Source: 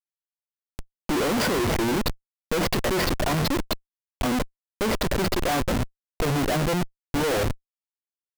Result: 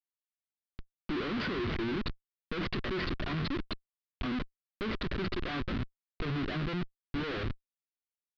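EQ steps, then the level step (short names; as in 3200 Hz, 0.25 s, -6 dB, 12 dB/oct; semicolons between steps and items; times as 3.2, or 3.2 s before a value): steep low-pass 4300 Hz 36 dB/oct; band shelf 670 Hz -9 dB 1.2 oct; -8.5 dB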